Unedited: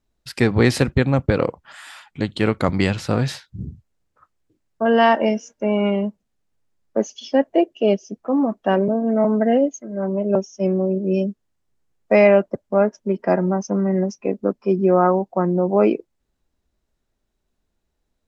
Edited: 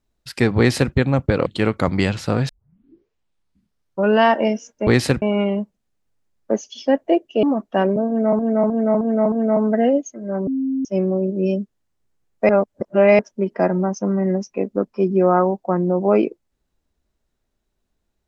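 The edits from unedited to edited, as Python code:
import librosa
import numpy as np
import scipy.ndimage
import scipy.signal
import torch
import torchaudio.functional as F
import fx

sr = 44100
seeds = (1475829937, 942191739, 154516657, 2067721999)

y = fx.edit(x, sr, fx.duplicate(start_s=0.58, length_s=0.35, to_s=5.68),
    fx.cut(start_s=1.46, length_s=0.81),
    fx.tape_start(start_s=3.3, length_s=1.75),
    fx.cut(start_s=7.89, length_s=0.46),
    fx.repeat(start_s=9.0, length_s=0.31, count=5),
    fx.bleep(start_s=10.15, length_s=0.38, hz=266.0, db=-18.5),
    fx.reverse_span(start_s=12.17, length_s=0.7), tone=tone)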